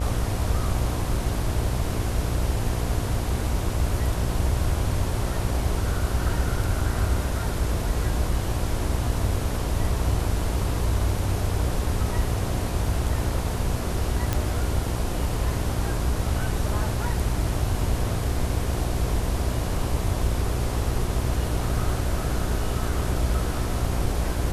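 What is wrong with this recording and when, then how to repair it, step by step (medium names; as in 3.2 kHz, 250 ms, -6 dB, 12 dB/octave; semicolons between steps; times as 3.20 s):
buzz 60 Hz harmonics 18 -29 dBFS
14.33 s: pop -9 dBFS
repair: de-click; de-hum 60 Hz, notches 18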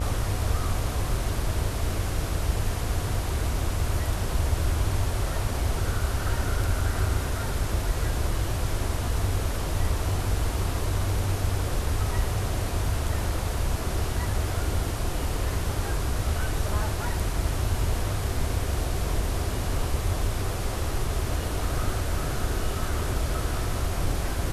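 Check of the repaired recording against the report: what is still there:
nothing left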